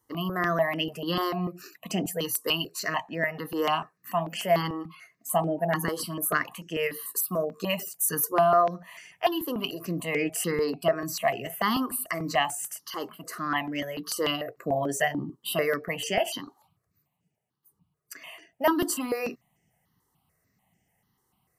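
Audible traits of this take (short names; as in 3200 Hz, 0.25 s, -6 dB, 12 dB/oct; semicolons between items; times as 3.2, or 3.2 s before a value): notches that jump at a steady rate 6.8 Hz 670–4000 Hz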